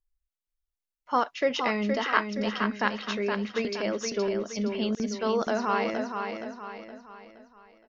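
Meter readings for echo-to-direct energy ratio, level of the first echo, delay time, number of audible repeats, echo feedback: -5.0 dB, -6.0 dB, 0.469 s, 4, 43%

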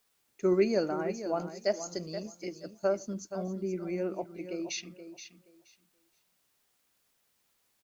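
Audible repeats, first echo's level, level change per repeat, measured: 2, -11.0 dB, -14.5 dB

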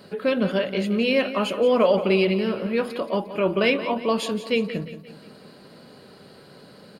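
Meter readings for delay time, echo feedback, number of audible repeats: 0.176 s, 46%, 4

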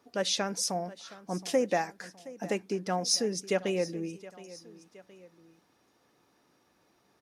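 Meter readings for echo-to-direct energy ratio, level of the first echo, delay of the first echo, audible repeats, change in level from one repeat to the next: -17.5 dB, -18.5 dB, 0.719 s, 2, -5.5 dB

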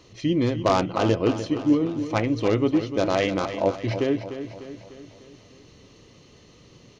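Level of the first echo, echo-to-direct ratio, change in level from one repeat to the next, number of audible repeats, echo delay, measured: -10.5 dB, -9.0 dB, -5.5 dB, 5, 0.299 s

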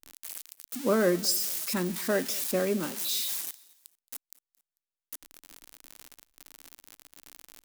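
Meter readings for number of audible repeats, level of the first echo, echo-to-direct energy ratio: 2, -23.0 dB, -22.5 dB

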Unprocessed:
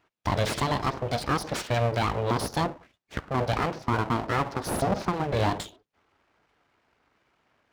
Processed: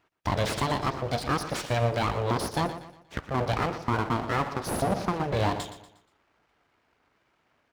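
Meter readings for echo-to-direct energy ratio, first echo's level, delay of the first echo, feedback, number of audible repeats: -11.5 dB, -12.0 dB, 0.119 s, 39%, 3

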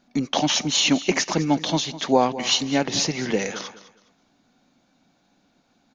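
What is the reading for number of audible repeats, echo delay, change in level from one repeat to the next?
2, 0.206 s, -12.0 dB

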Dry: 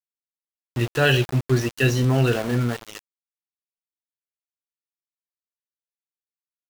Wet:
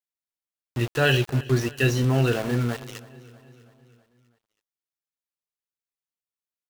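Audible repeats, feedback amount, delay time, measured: 4, 58%, 0.324 s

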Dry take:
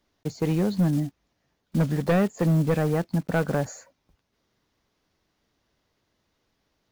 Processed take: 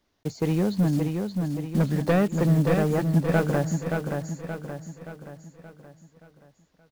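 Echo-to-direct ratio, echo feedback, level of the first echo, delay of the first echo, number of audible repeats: -4.0 dB, 48%, -5.0 dB, 0.575 s, 5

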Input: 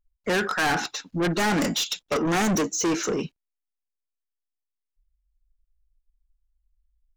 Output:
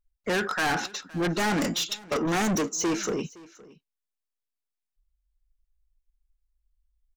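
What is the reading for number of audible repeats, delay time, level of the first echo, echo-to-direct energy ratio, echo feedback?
1, 0.516 s, -22.0 dB, -22.0 dB, no steady repeat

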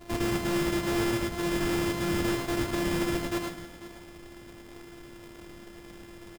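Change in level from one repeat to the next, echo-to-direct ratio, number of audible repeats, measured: no steady repeat, -2.5 dB, 4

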